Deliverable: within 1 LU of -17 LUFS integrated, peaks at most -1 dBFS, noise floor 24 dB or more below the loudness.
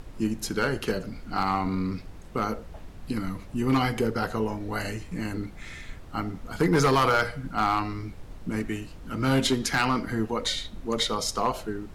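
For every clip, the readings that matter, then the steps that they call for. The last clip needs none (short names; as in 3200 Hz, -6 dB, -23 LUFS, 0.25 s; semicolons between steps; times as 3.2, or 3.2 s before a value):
clipped 0.6%; flat tops at -15.5 dBFS; noise floor -44 dBFS; noise floor target -52 dBFS; loudness -27.5 LUFS; peak -15.5 dBFS; loudness target -17.0 LUFS
-> clip repair -15.5 dBFS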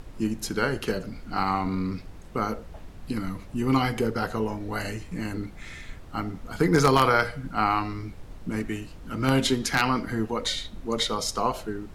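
clipped 0.0%; noise floor -44 dBFS; noise floor target -51 dBFS
-> noise print and reduce 7 dB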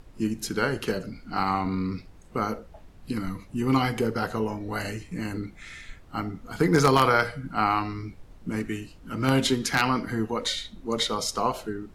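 noise floor -50 dBFS; noise floor target -51 dBFS
-> noise print and reduce 6 dB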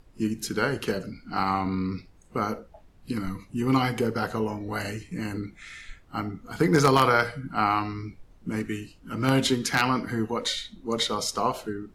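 noise floor -55 dBFS; loudness -27.0 LUFS; peak -6.5 dBFS; loudness target -17.0 LUFS
-> gain +10 dB; limiter -1 dBFS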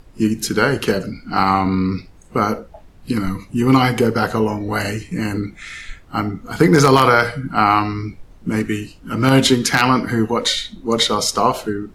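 loudness -17.5 LUFS; peak -1.0 dBFS; noise floor -45 dBFS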